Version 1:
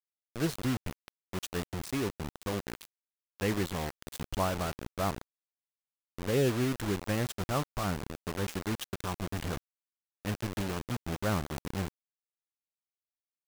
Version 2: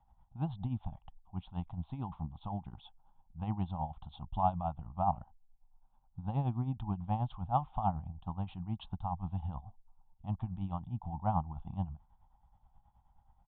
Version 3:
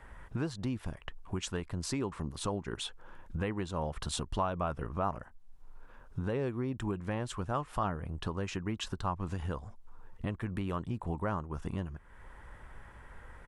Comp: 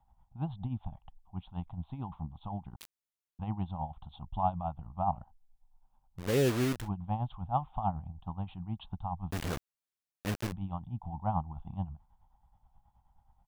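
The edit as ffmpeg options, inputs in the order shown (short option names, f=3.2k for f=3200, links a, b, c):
-filter_complex "[0:a]asplit=3[a][b][c];[1:a]asplit=4[d][e][f][g];[d]atrim=end=2.762[h];[a]atrim=start=2.758:end=3.392[i];[e]atrim=start=3.388:end=6.3[j];[b]atrim=start=6.14:end=6.89[k];[f]atrim=start=6.73:end=9.312[l];[c]atrim=start=9.308:end=10.522[m];[g]atrim=start=10.518[n];[h][i]acrossfade=d=0.004:c1=hsin:c2=hsin[o];[o][j]acrossfade=d=0.004:c1=hsin:c2=hsin[p];[p][k]acrossfade=d=0.16:c1=tri:c2=tri[q];[q][l]acrossfade=d=0.16:c1=tri:c2=tri[r];[r][m]acrossfade=d=0.004:c1=hsin:c2=hsin[s];[s][n]acrossfade=d=0.004:c1=hsin:c2=hsin"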